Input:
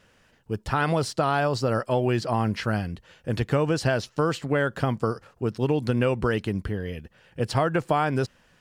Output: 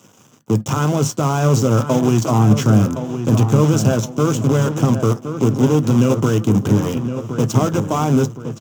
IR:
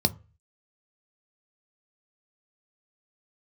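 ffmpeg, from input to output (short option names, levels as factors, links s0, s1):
-filter_complex "[0:a]highshelf=f=4100:g=10,bandreject=f=5000:w=10,alimiter=limit=0.0794:level=0:latency=1:release=347,flanger=delay=2.2:depth=2:regen=-90:speed=0.79:shape=sinusoidal,acrusher=bits=7:dc=4:mix=0:aa=0.000001,asplit=2[s0][s1];[s1]adelay=1067,lowpass=f=2600:p=1,volume=0.355,asplit=2[s2][s3];[s3]adelay=1067,lowpass=f=2600:p=1,volume=0.44,asplit=2[s4][s5];[s5]adelay=1067,lowpass=f=2600:p=1,volume=0.44,asplit=2[s6][s7];[s7]adelay=1067,lowpass=f=2600:p=1,volume=0.44,asplit=2[s8][s9];[s9]adelay=1067,lowpass=f=2600:p=1,volume=0.44[s10];[s0][s2][s4][s6][s8][s10]amix=inputs=6:normalize=0[s11];[1:a]atrim=start_sample=2205,afade=t=out:st=0.16:d=0.01,atrim=end_sample=7497,asetrate=61740,aresample=44100[s12];[s11][s12]afir=irnorm=-1:irlink=0,volume=1.88"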